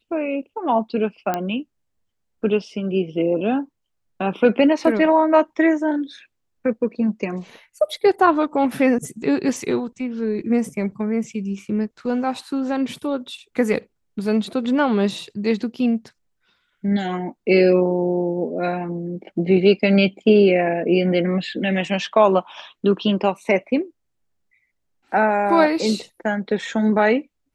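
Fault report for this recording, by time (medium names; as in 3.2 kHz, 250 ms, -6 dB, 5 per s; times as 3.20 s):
1.34 s: pop -9 dBFS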